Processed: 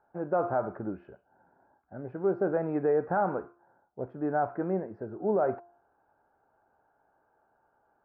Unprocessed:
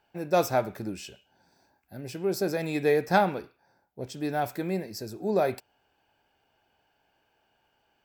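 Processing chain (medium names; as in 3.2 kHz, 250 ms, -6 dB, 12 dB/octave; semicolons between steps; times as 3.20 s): Chebyshev low-pass 1.4 kHz, order 4; bass shelf 360 Hz -8 dB; de-hum 347.6 Hz, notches 3; peak limiter -23 dBFS, peak gain reduction 11 dB; trim +5 dB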